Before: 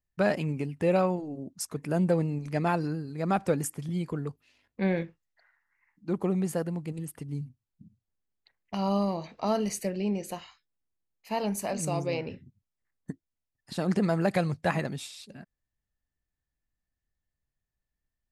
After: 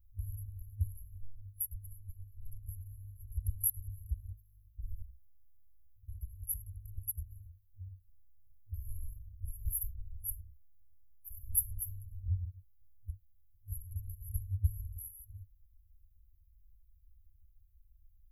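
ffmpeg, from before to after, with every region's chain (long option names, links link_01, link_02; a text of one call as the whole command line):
ffmpeg -i in.wav -filter_complex "[0:a]asettb=1/sr,asplit=3[link_01][link_02][link_03];[link_01]atrim=end=1.174[link_04];[link_02]atrim=start=1.17:end=2.69,asetpts=PTS-STARTPTS,afade=type=in:duration=0.004:curve=qsin,afade=type=out:start_time=1.516:duration=0.004:curve=qsin,aecho=1:1:7.1:0.39,atrim=end_sample=67032,acompressor=threshold=-34dB:ratio=2:attack=3.2:release=140:knee=1:detection=peak[link_05];[link_03]atrim=start=2.686[link_06];[link_04][link_05]acrossfade=duration=0.004:curve1=hsin:curve2=qsin[link_07];[link_07][link_06]acrossfade=duration=0.004:curve1=qsin:curve2=hsin,afftfilt=real='re*(1-between(b*sr/4096,100,11000))':imag='im*(1-between(b*sr/4096,100,11000))':win_size=4096:overlap=0.75,lowshelf=frequency=150:gain=12,volume=13.5dB" out.wav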